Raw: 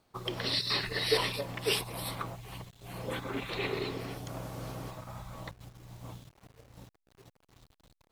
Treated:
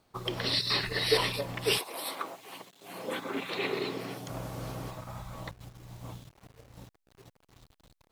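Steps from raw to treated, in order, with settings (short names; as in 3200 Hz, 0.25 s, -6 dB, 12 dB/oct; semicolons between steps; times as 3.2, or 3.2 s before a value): 1.77–4.28 HPF 330 Hz -> 130 Hz 24 dB/oct; gain +2 dB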